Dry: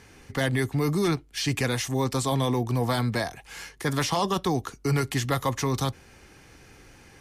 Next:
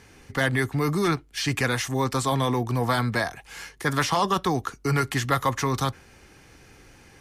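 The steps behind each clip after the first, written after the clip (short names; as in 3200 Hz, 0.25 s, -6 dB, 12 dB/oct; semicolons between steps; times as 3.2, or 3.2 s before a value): dynamic EQ 1400 Hz, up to +7 dB, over -43 dBFS, Q 1.2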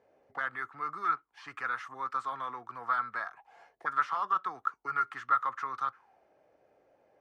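auto-wah 580–1300 Hz, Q 7.8, up, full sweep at -23 dBFS; gain +3 dB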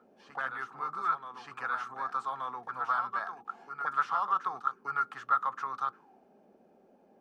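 band noise 190–430 Hz -63 dBFS; thirty-one-band EQ 100 Hz -5 dB, 315 Hz -8 dB, 800 Hz +5 dB, 2000 Hz -8 dB; reverse echo 1.176 s -7.5 dB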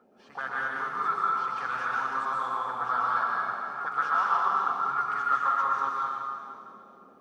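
plate-style reverb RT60 2.2 s, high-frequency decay 1×, pre-delay 0.11 s, DRR -4.5 dB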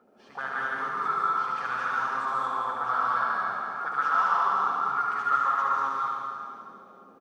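echo 74 ms -4.5 dB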